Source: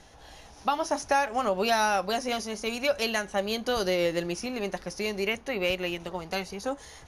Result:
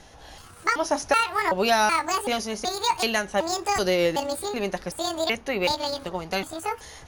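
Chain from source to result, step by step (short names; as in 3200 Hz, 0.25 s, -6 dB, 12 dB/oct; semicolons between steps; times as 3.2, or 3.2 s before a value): trilling pitch shifter +8.5 st, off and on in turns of 0.378 s; gain +4 dB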